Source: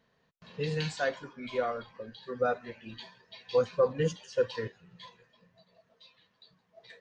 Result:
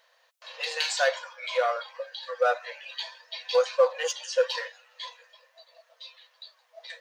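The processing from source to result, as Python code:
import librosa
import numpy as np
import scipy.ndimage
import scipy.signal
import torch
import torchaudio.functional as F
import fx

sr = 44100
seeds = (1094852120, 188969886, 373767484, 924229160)

p1 = fx.high_shelf(x, sr, hz=2700.0, db=7.5)
p2 = np.clip(p1, -10.0 ** (-31.5 / 20.0), 10.0 ** (-31.5 / 20.0))
p3 = p1 + F.gain(torch.from_numpy(p2), -7.0).numpy()
p4 = fx.brickwall_highpass(p3, sr, low_hz=480.0)
y = F.gain(torch.from_numpy(p4), 4.0).numpy()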